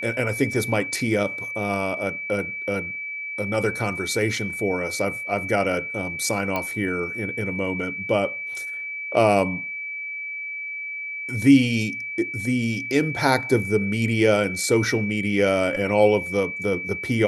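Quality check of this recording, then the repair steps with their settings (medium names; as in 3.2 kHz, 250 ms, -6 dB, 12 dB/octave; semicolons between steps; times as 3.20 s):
whine 2.3 kHz -29 dBFS
6.56 s: pop -12 dBFS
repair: de-click; band-stop 2.3 kHz, Q 30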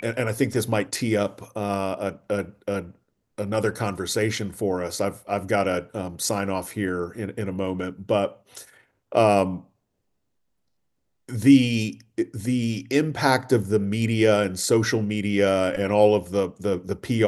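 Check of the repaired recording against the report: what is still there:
nothing left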